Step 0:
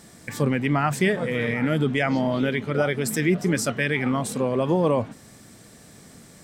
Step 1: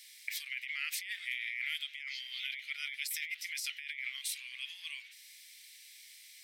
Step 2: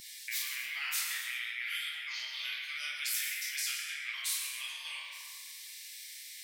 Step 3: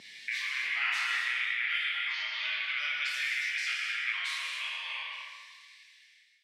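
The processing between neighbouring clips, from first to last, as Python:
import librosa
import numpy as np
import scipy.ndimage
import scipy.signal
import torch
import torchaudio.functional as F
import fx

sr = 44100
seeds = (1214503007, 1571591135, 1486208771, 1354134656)

y1 = scipy.signal.sosfilt(scipy.signal.cheby1(5, 1.0, 2100.0, 'highpass', fs=sr, output='sos'), x)
y1 = fx.peak_eq(y1, sr, hz=7600.0, db=-10.5, octaves=0.7)
y1 = fx.over_compress(y1, sr, threshold_db=-39.0, ratio=-1.0)
y2 = fx.bin_expand(y1, sr, power=1.5)
y2 = fx.rev_fdn(y2, sr, rt60_s=1.4, lf_ratio=0.9, hf_ratio=0.5, size_ms=100.0, drr_db=-9.0)
y2 = fx.spectral_comp(y2, sr, ratio=2.0)
y2 = y2 * librosa.db_to_amplitude(1.0)
y3 = fx.fade_out_tail(y2, sr, length_s=1.79)
y3 = fx.bandpass_edges(y3, sr, low_hz=180.0, high_hz=2500.0)
y3 = fx.rev_gated(y3, sr, seeds[0], gate_ms=300, shape='flat', drr_db=2.0)
y3 = y3 * librosa.db_to_amplitude(7.5)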